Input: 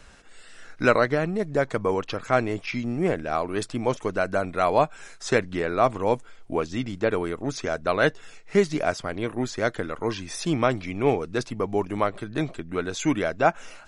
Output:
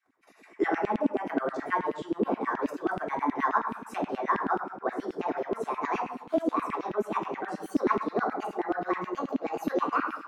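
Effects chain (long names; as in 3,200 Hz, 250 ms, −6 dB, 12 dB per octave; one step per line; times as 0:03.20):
pitch glide at a constant tempo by +5.5 semitones starting unshifted
mains-hum notches 60/120/180 Hz
noise gate −44 dBFS, range −26 dB
convolution reverb RT60 0.90 s, pre-delay 3 ms, DRR −0.5 dB
wrong playback speed 33 rpm record played at 45 rpm
downward compressor 2 to 1, threshold −38 dBFS, peak gain reduction 14 dB
drawn EQ curve 130 Hz 0 dB, 620 Hz −8 dB, 1,300 Hz −1 dB, 3,300 Hz −20 dB, 5,900 Hz −14 dB, 9,800 Hz −18 dB
auto-filter high-pass saw down 9.4 Hz 230–2,900 Hz
parametric band 250 Hz +9 dB 1.5 octaves
level +4.5 dB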